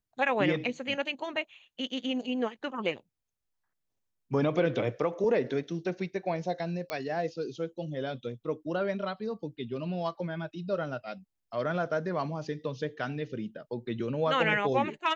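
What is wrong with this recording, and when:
0:06.90: click −18 dBFS

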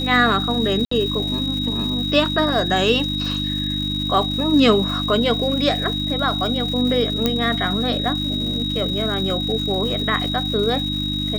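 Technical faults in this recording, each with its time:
surface crackle 320 per second −29 dBFS
mains hum 50 Hz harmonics 6 −26 dBFS
whistle 3,800 Hz −24 dBFS
0:00.85–0:00.91: drop-out 64 ms
0:07.26: click −4 dBFS

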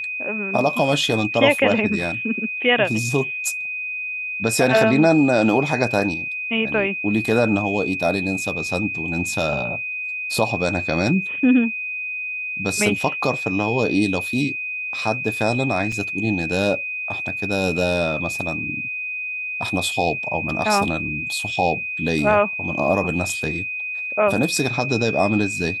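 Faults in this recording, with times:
whistle 2,500 Hz −25 dBFS
0:15.92: drop-out 4.5 ms

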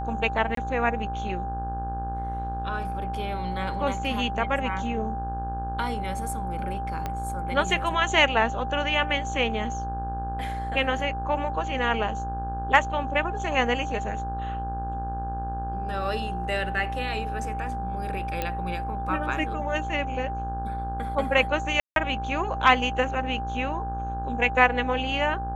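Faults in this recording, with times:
mains buzz 60 Hz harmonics 28 −33 dBFS
whistle 790 Hz −31 dBFS
0:00.55–0:00.57: drop-out 23 ms
0:07.06: click −16 dBFS
0:18.42: click −13 dBFS
0:21.80–0:21.96: drop-out 162 ms

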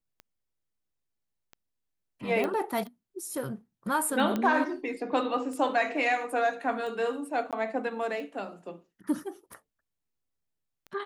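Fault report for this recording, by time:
scratch tick 45 rpm −30 dBFS
0:02.44: click −18 dBFS
0:04.36: click −17 dBFS
0:07.51–0:07.53: drop-out 17 ms

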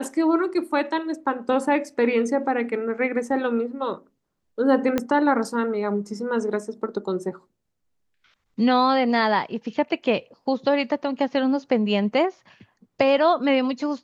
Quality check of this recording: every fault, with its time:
0:04.98: click −9 dBFS

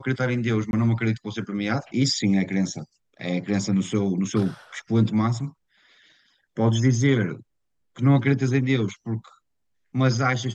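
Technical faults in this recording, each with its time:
0:00.71–0:00.73: drop-out 21 ms

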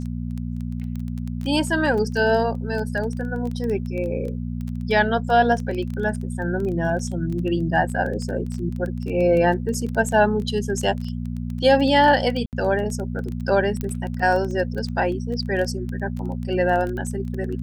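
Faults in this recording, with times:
surface crackle 13 per second −27 dBFS
mains hum 60 Hz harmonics 4 −28 dBFS
0:07.89: drop-out 2.8 ms
0:12.46–0:12.53: drop-out 68 ms
0:13.81: click −14 dBFS

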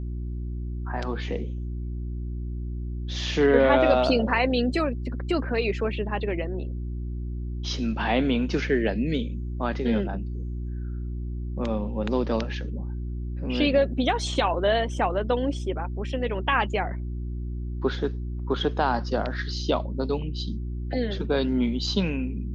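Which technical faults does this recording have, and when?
mains hum 60 Hz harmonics 6 −31 dBFS

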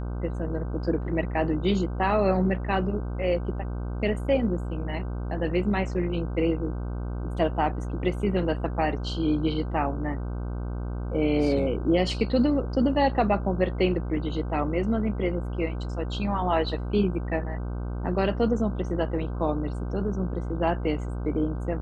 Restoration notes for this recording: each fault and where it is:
mains buzz 60 Hz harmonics 26 −31 dBFS

